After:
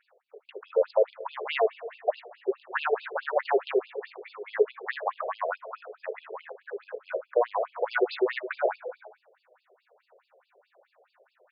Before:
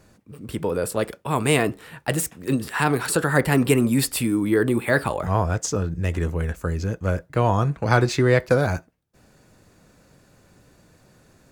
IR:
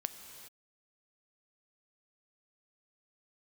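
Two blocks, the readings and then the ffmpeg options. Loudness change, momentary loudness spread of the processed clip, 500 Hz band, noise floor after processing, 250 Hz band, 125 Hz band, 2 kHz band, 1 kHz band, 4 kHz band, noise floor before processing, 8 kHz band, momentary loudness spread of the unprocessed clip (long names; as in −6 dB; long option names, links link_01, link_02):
−7.5 dB, 15 LU, −3.5 dB, −75 dBFS, −18.0 dB, below −40 dB, −8.0 dB, −5.5 dB, −10.0 dB, −57 dBFS, below −40 dB, 8 LU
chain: -filter_complex "[0:a]volume=11.5dB,asoftclip=hard,volume=-11.5dB,equalizer=frequency=5000:width_type=o:width=2.7:gain=-12,bandreject=frequency=107.2:width_type=h:width=4,bandreject=frequency=214.4:width_type=h:width=4,bandreject=frequency=321.6:width_type=h:width=4,bandreject=frequency=428.8:width_type=h:width=4,asplit=2[link_01][link_02];[1:a]atrim=start_sample=2205[link_03];[link_02][link_03]afir=irnorm=-1:irlink=0,volume=-1dB[link_04];[link_01][link_04]amix=inputs=2:normalize=0,afftfilt=real='re*between(b*sr/1024,500*pow(3700/500,0.5+0.5*sin(2*PI*4.7*pts/sr))/1.41,500*pow(3700/500,0.5+0.5*sin(2*PI*4.7*pts/sr))*1.41)':imag='im*between(b*sr/1024,500*pow(3700/500,0.5+0.5*sin(2*PI*4.7*pts/sr))/1.41,500*pow(3700/500,0.5+0.5*sin(2*PI*4.7*pts/sr))*1.41)':win_size=1024:overlap=0.75"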